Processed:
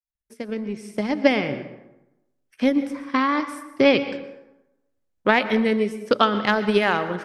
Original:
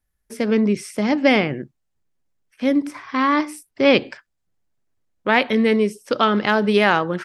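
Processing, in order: opening faded in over 1.54 s; transient shaper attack +8 dB, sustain -1 dB; plate-style reverb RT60 0.95 s, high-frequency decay 0.6×, pre-delay 0.105 s, DRR 11.5 dB; gain -5 dB

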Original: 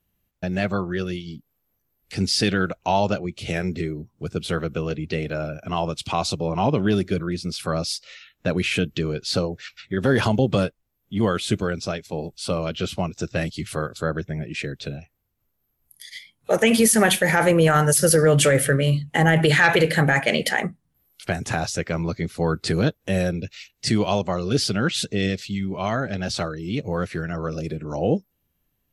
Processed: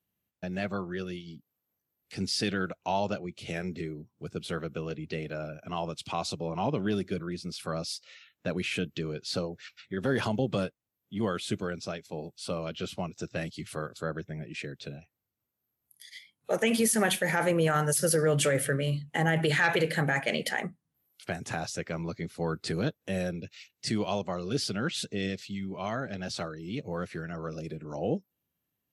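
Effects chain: HPF 110 Hz; gain -8.5 dB

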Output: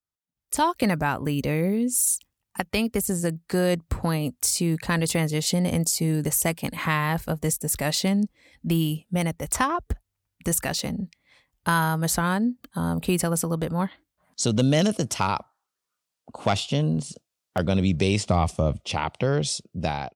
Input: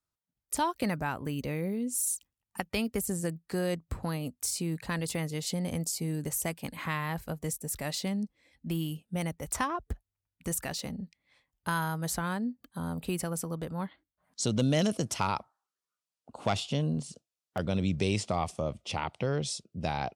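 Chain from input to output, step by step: 18.26–18.8 low shelf 160 Hz +10.5 dB; AGC gain up to 16.5 dB; gain -6.5 dB

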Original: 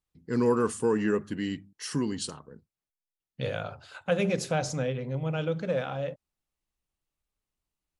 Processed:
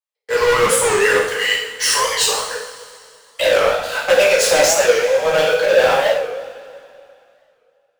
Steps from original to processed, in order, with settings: Chebyshev high-pass 430 Hz, order 10; 2.49–3.41 band shelf 2500 Hz +14.5 dB; sample leveller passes 5; two-slope reverb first 0.7 s, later 2.6 s, from -15 dB, DRR -5 dB; record warp 45 rpm, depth 160 cents; gain +1.5 dB

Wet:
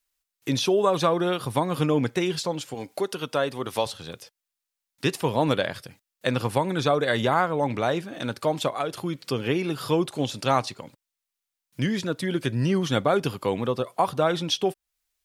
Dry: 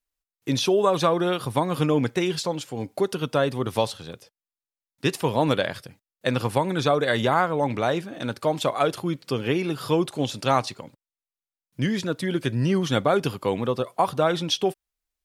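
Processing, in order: 2.74–3.86 low shelf 230 Hz -10.5 dB; 8.67–9.26 compressor, threshold -23 dBFS, peak gain reduction 6.5 dB; mismatched tape noise reduction encoder only; gain -1 dB

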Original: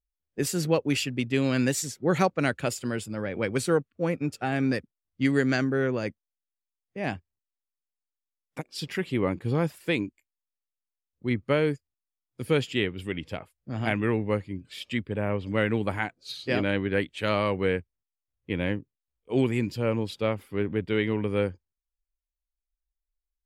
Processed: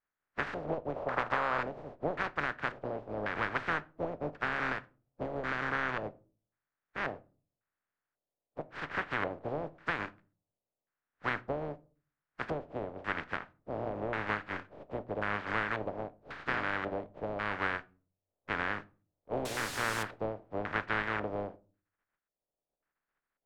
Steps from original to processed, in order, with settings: spectral contrast lowered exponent 0.15; 0.96–1.61 band shelf 770 Hz +8.5 dB; compressor, threshold -28 dBFS, peak gain reduction 10.5 dB; LFO low-pass square 0.92 Hz 610–1600 Hz; 19.45–20.03 requantised 6-bit, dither triangular; air absorption 53 m; shoebox room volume 210 m³, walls furnished, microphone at 0.34 m

